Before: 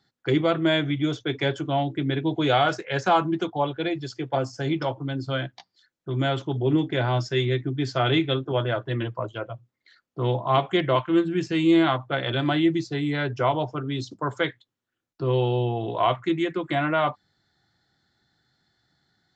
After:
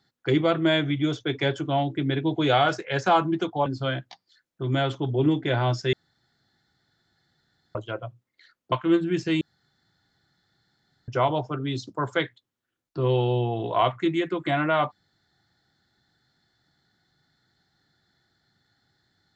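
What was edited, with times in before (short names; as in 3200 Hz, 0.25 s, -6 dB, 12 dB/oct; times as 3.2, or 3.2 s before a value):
3.66–5.13 cut
7.4–9.22 room tone
10.19–10.96 cut
11.65–13.32 room tone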